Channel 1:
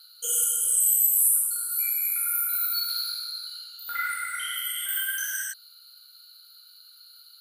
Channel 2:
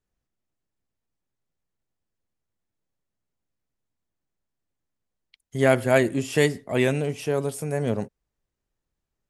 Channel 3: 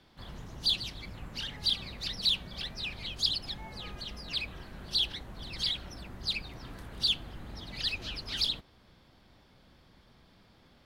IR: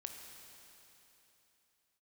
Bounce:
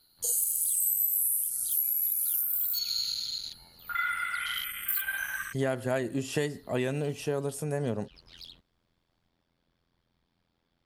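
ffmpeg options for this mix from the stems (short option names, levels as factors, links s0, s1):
-filter_complex "[0:a]afwtdn=0.02,equalizer=f=12000:t=o:w=0.46:g=9,volume=1.12[s0];[1:a]bandreject=f=2200:w=7.5,volume=0.708,asplit=2[s1][s2];[2:a]tremolo=f=85:d=1,asoftclip=type=tanh:threshold=0.0501,volume=0.266[s3];[s2]apad=whole_len=478849[s4];[s3][s4]sidechaincompress=threshold=0.01:ratio=8:attack=7.8:release=128[s5];[s0][s1][s5]amix=inputs=3:normalize=0,acompressor=threshold=0.0562:ratio=8"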